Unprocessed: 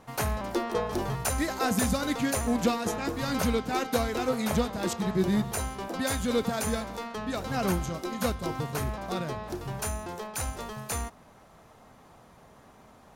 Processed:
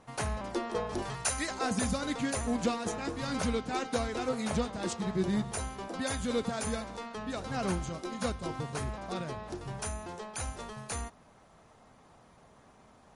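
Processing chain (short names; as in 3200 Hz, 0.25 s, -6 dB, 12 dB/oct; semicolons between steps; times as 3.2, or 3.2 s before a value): 1.02–1.51 tilt shelf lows -5 dB, about 890 Hz; gain -4 dB; MP3 48 kbps 44100 Hz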